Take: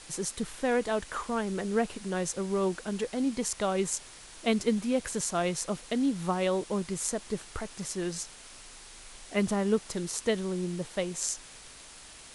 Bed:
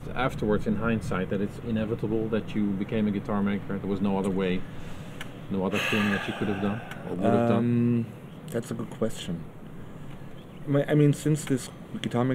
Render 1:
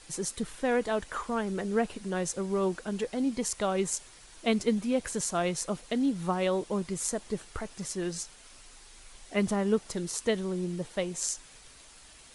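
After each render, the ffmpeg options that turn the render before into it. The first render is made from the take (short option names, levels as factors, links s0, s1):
-af "afftdn=nr=6:nf=-50"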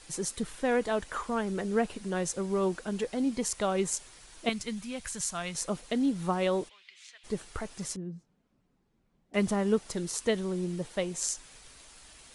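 -filter_complex "[0:a]asettb=1/sr,asplit=3[s0][s1][s2];[s0]atrim=end=4.494[s3];[s1]atrim=start=4.49:end=5.55,asetpts=PTS-STARTPTS,afade=t=in:d=0.004:c=qsin,afade=t=out:st=1.056:d=0.004:c=qsin,equalizer=f=400:t=o:w=2:g=-14.5[s4];[s2]atrim=start=5.546[s5];[s3][s4]acrossfade=d=0.004:c1=hsin:c2=qsin[s6];[s6][s5]acrossfade=d=0.004:c1=qsin:c2=hsin,asplit=3[s7][s8][s9];[s7]afade=t=out:st=6.68:d=0.02[s10];[s8]asuperpass=centerf=2800:order=4:qfactor=1.6,afade=t=in:st=6.68:d=0.02,afade=t=out:st=7.23:d=0.02[s11];[s9]afade=t=in:st=7.23:d=0.02[s12];[s10][s11][s12]amix=inputs=3:normalize=0,asettb=1/sr,asplit=3[s13][s14][s15];[s13]atrim=end=7.964[s16];[s14]atrim=start=7.96:end=9.34,asetpts=PTS-STARTPTS,afade=t=in:d=0.004:c=qsin,afade=t=out:st=1.376:d=0.004:c=qsin,bandpass=f=180:t=q:w=2.2[s17];[s15]atrim=start=9.336[s18];[s16][s17]acrossfade=d=0.004:c1=hsin:c2=qsin[s19];[s19][s18]acrossfade=d=0.004:c1=qsin:c2=hsin"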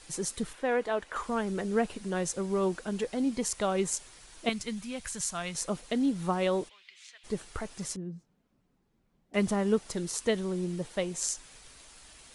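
-filter_complex "[0:a]asettb=1/sr,asplit=3[s0][s1][s2];[s0]atrim=end=0.534[s3];[s1]atrim=start=0.53:end=1.16,asetpts=PTS-STARTPTS,afade=t=in:d=0.004:c=qsin,afade=t=out:st=0.626:d=0.004:c=qsin,bass=f=250:g=-10,treble=f=4000:g=-9[s4];[s2]atrim=start=1.156[s5];[s3][s4]acrossfade=d=0.004:c1=hsin:c2=qsin[s6];[s6][s5]acrossfade=d=0.004:c1=qsin:c2=hsin"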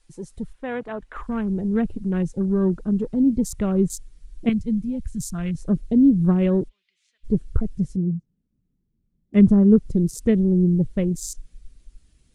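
-af "afwtdn=0.0126,asubboost=boost=11.5:cutoff=240"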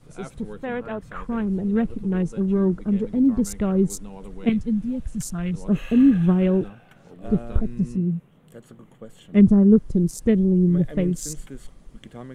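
-filter_complex "[1:a]volume=0.211[s0];[0:a][s0]amix=inputs=2:normalize=0"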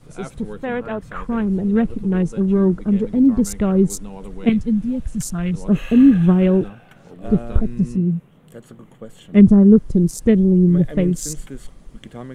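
-af "volume=1.68,alimiter=limit=0.891:level=0:latency=1"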